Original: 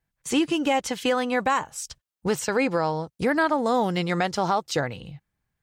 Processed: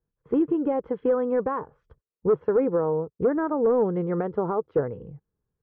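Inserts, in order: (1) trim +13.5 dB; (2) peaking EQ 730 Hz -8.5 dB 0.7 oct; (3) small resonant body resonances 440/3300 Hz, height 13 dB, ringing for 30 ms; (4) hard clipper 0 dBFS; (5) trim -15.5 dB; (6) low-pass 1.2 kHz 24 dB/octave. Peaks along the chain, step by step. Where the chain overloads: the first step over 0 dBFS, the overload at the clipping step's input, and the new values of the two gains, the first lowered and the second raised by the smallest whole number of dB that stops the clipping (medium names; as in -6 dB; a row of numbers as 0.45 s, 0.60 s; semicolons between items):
+2.0 dBFS, +0.5 dBFS, +8.0 dBFS, 0.0 dBFS, -15.5 dBFS, -14.0 dBFS; step 1, 8.0 dB; step 1 +5.5 dB, step 5 -7.5 dB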